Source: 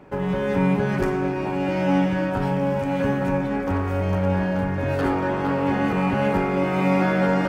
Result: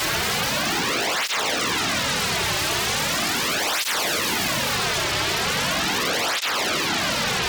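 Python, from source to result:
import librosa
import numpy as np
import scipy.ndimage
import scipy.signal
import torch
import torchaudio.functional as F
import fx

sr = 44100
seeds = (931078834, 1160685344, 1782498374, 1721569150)

p1 = x + 0.4 * np.pad(x, (int(3.8 * sr / 1000.0), 0))[:len(x)]
p2 = fx.lpc_vocoder(p1, sr, seeds[0], excitation='whisper', order=10)
p3 = p2 + fx.echo_single(p2, sr, ms=380, db=-8.5, dry=0)
p4 = fx.paulstretch(p3, sr, seeds[1], factor=13.0, window_s=0.25, from_s=0.71)
p5 = fx.low_shelf(p4, sr, hz=450.0, db=-6.0)
p6 = fx.hum_notches(p5, sr, base_hz=50, count=5)
p7 = (np.mod(10.0 ** (22.5 / 20.0) * p6 + 1.0, 2.0) - 1.0) / 10.0 ** (22.5 / 20.0)
p8 = fx.rider(p7, sr, range_db=10, speed_s=0.5)
p9 = fx.fold_sine(p8, sr, drive_db=15, ceiling_db=-21.5)
p10 = fx.flanger_cancel(p9, sr, hz=0.39, depth_ms=4.4)
y = F.gain(torch.from_numpy(p10), 4.5).numpy()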